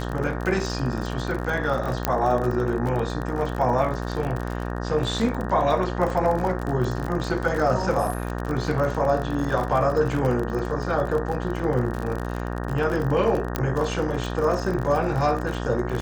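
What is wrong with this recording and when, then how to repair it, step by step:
buzz 60 Hz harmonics 31 -29 dBFS
crackle 43 per s -27 dBFS
2.05 s: pop -5 dBFS
13.56 s: pop -9 dBFS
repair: de-click; de-hum 60 Hz, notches 31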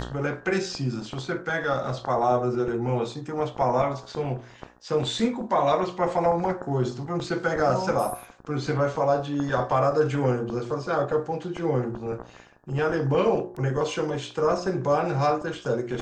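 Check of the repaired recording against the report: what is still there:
13.56 s: pop

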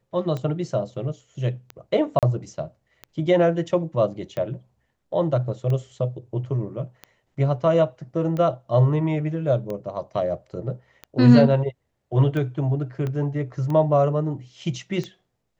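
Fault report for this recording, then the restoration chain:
tick 45 rpm -19 dBFS
2.19–2.23 s: dropout 37 ms
13.07 s: pop -18 dBFS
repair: de-click; interpolate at 2.19 s, 37 ms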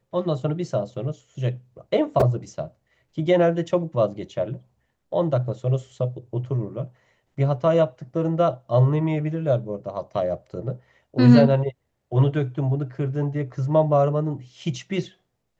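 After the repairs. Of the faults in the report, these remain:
13.07 s: pop

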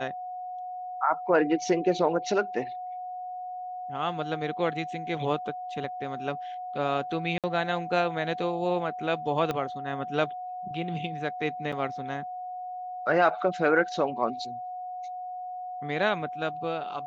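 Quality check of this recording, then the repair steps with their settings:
whine 730 Hz -34 dBFS
7.38–7.44 s: dropout 57 ms
9.51 s: pop -16 dBFS
11.72–11.73 s: dropout 5.8 ms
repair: de-click; band-stop 730 Hz, Q 30; interpolate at 7.38 s, 57 ms; interpolate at 11.72 s, 5.8 ms

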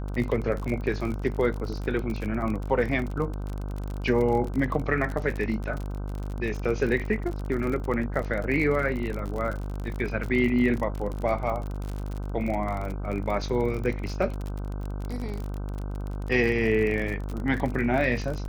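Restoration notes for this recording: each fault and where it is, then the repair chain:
buzz 50 Hz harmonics 31 -32 dBFS
crackle 40 per s -30 dBFS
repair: de-click; de-hum 50 Hz, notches 31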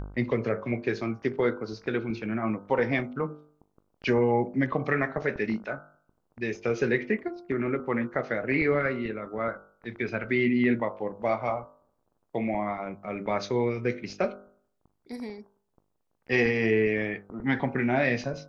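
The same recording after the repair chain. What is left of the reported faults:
nothing left

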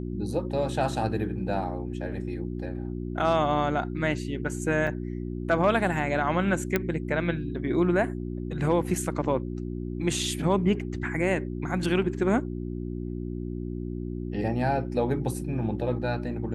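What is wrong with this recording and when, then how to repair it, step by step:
hum 60 Hz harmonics 6 -33 dBFS
4.87 s: dropout 3.6 ms
6.76 s: pop -10 dBFS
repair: de-click; de-hum 60 Hz, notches 6; interpolate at 4.87 s, 3.6 ms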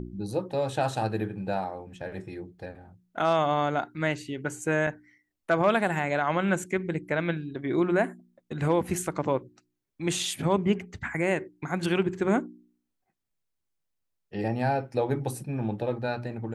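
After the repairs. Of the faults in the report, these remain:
nothing left

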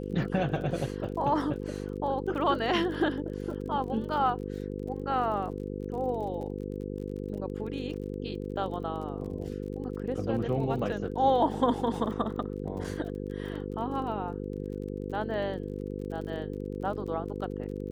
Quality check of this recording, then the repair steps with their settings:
buzz 50 Hz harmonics 10 -36 dBFS
crackle 32 per s -40 dBFS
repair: de-click; de-hum 50 Hz, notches 10

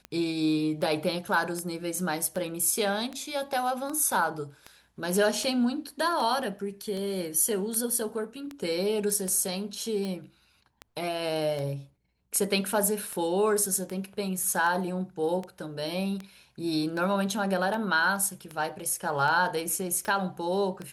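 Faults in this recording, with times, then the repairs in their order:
tick 78 rpm -22 dBFS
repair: de-click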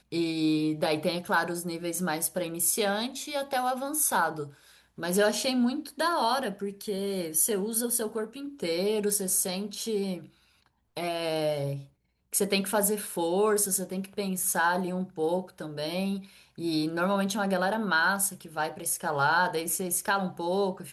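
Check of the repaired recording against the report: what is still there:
nothing left

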